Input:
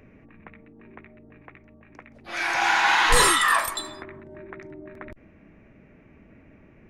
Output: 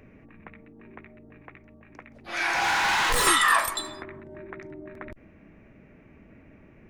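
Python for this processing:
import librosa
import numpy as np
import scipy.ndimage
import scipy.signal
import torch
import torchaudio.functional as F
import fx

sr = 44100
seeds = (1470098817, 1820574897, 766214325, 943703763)

y = fx.clip_hard(x, sr, threshold_db=-21.0, at=(2.5, 3.27))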